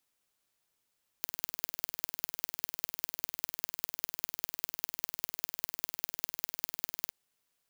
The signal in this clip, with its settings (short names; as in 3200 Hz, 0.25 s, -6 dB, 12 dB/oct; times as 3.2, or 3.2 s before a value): pulse train 20/s, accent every 4, -3 dBFS 5.86 s